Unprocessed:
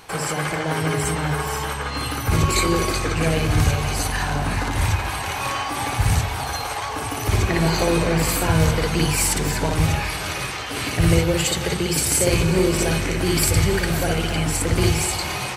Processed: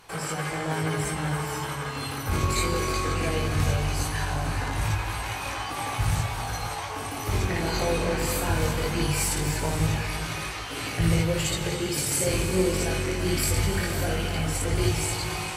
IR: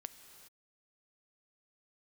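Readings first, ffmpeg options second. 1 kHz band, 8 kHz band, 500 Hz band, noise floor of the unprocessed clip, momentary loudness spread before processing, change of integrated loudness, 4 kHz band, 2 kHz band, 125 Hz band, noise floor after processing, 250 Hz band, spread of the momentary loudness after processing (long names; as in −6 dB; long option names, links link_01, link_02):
−5.5 dB, −6.0 dB, −5.5 dB, −28 dBFS, 7 LU, −6.0 dB, −6.0 dB, −6.0 dB, −5.5 dB, −33 dBFS, −6.5 dB, 7 LU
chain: -filter_complex "[0:a]flanger=delay=18.5:depth=3.4:speed=0.19[link_01];[1:a]atrim=start_sample=2205,asetrate=33075,aresample=44100[link_02];[link_01][link_02]afir=irnorm=-1:irlink=0"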